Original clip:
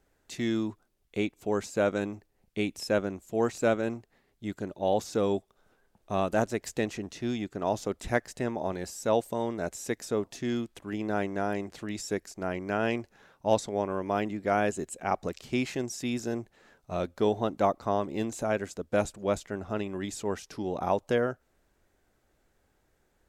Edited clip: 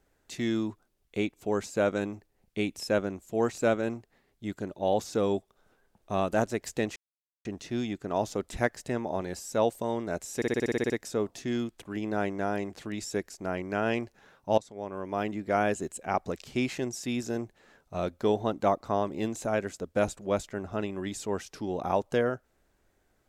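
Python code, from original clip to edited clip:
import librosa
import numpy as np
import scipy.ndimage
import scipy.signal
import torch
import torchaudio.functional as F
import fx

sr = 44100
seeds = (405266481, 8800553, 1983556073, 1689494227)

y = fx.edit(x, sr, fx.insert_silence(at_s=6.96, length_s=0.49),
    fx.stutter(start_s=9.87, slice_s=0.06, count=10),
    fx.fade_in_from(start_s=13.55, length_s=0.81, floor_db=-17.5), tone=tone)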